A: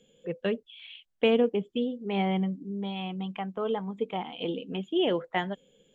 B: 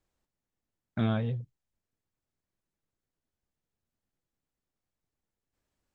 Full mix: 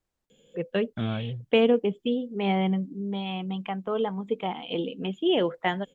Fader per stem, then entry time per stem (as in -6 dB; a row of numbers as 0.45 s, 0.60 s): +2.5 dB, -1.5 dB; 0.30 s, 0.00 s